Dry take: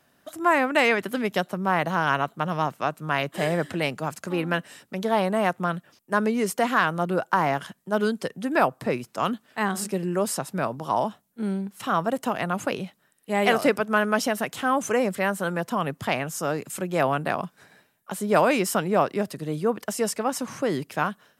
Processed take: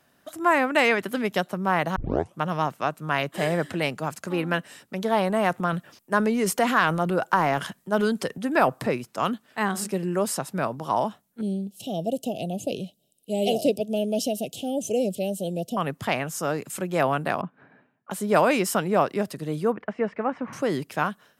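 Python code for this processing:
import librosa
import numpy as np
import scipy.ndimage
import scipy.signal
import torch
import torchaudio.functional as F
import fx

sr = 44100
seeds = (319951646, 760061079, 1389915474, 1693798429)

y = fx.transient(x, sr, attack_db=1, sustain_db=6, at=(5.27, 8.9))
y = fx.ellip_bandstop(y, sr, low_hz=670.0, high_hz=2900.0, order=3, stop_db=40, at=(11.41, 15.77))
y = fx.cabinet(y, sr, low_hz=110.0, low_slope=12, high_hz=2300.0, hz=(130.0, 260.0, 2000.0), db=(5, 9, -6), at=(17.41, 18.11))
y = fx.cheby1_lowpass(y, sr, hz=2200.0, order=3, at=(19.72, 20.53))
y = fx.edit(y, sr, fx.tape_start(start_s=1.96, length_s=0.43), tone=tone)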